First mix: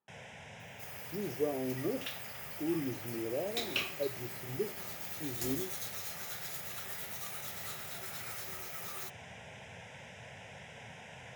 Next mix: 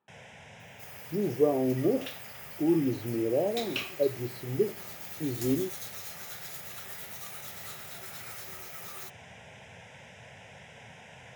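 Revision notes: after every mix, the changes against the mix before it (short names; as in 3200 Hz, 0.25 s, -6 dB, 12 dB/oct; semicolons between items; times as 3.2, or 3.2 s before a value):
speech +9.0 dB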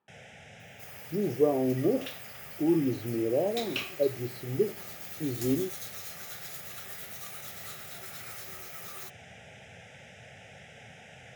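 first sound: add Butterworth band-stop 1000 Hz, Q 3.3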